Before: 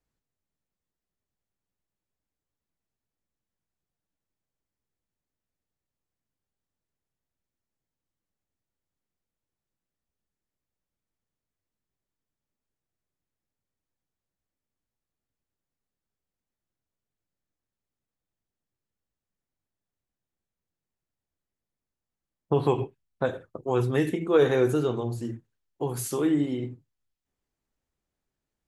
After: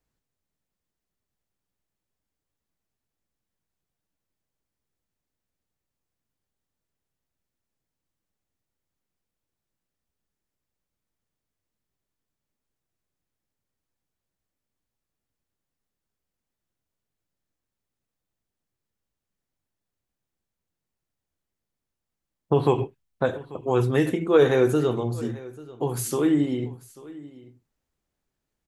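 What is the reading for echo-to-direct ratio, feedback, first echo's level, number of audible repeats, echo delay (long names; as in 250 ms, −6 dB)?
−20.0 dB, repeats not evenly spaced, −20.0 dB, 1, 840 ms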